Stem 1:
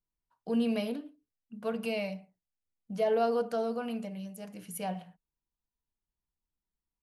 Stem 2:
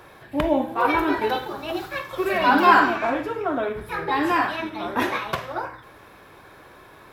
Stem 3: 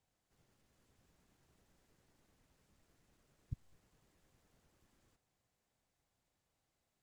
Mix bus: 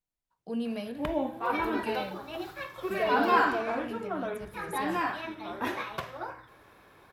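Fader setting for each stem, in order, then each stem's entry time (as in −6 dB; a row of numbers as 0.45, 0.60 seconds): −4.0, −9.0, −15.0 decibels; 0.00, 0.65, 0.00 seconds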